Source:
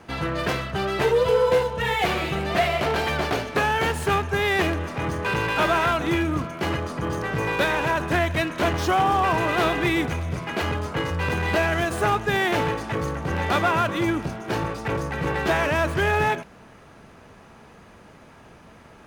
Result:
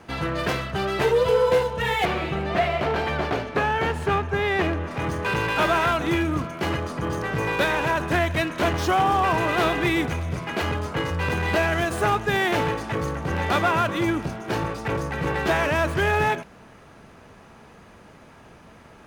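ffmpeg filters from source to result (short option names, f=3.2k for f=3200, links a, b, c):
-filter_complex "[0:a]asettb=1/sr,asplit=3[a][b][c];[a]atrim=end=2.054[d];[b]atrim=start=2.05:end=4.91,asetpts=PTS-STARTPTS,afade=t=in:d=0.004:c=qsin,afade=t=out:st=2.856:d=0.004:c=qsin,lowpass=f=2.4k:p=1[e];[c]atrim=start=4.906[f];[d][e]acrossfade=d=0.004:c1=hsin:c2=qsin[g];[g][f]acrossfade=d=0.004:c1=qsin:c2=hsin"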